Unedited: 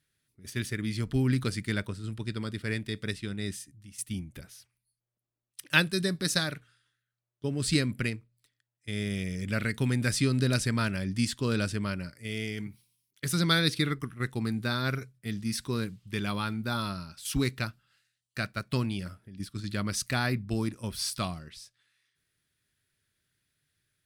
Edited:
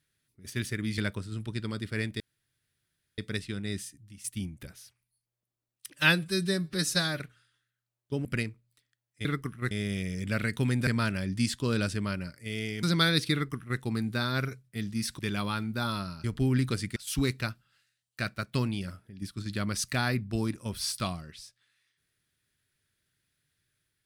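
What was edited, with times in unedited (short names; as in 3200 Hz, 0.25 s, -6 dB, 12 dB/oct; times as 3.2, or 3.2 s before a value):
0.98–1.7 move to 17.14
2.92 insert room tone 0.98 s
5.68–6.52 stretch 1.5×
7.57–7.92 cut
10.08–10.66 cut
12.62–13.33 cut
13.83–14.29 copy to 8.92
15.69–16.09 cut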